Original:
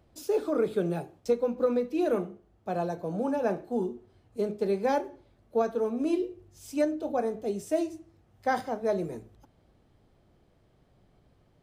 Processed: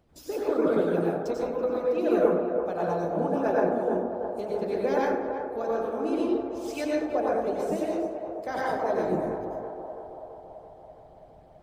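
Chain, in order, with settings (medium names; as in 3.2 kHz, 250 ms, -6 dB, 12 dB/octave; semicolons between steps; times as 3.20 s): 6.19–6.95 s: peaking EQ 2.7 kHz +8.5 dB 2.6 oct; plate-style reverb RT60 0.99 s, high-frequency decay 0.4×, pre-delay 80 ms, DRR -6 dB; dynamic bell 9.3 kHz, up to -7 dB, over -59 dBFS, Q 0.7; harmonic-percussive split harmonic -12 dB; on a send: band-passed feedback delay 332 ms, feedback 71%, band-pass 700 Hz, level -6.5 dB; on the sum: trim +2.5 dB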